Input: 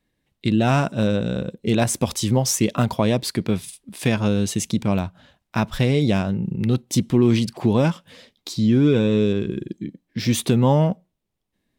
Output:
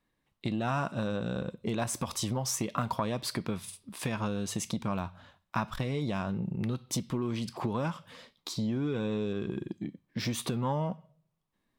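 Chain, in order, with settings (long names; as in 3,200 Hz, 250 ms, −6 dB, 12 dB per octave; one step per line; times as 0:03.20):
on a send at −9 dB: guitar amp tone stack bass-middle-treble 10-0-10 + convolution reverb RT60 0.55 s, pre-delay 3 ms
on the sum: downward compressor 10 to 1, threshold −21 dBFS, peak gain reduction 10 dB
parametric band 1,100 Hz +10 dB 0.87 octaves
saturating transformer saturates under 390 Hz
level −6.5 dB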